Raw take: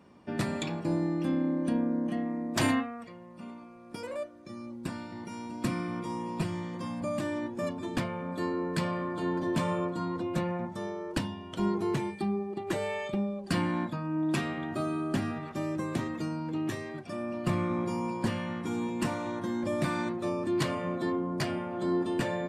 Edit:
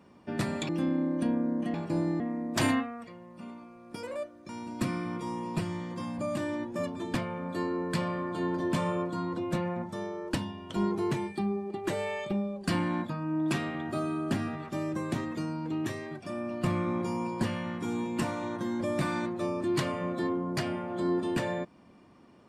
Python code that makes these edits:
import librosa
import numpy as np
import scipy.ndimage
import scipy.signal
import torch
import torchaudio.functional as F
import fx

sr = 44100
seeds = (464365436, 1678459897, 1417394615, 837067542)

y = fx.edit(x, sr, fx.move(start_s=0.69, length_s=0.46, to_s=2.2),
    fx.cut(start_s=4.49, length_s=0.83), tone=tone)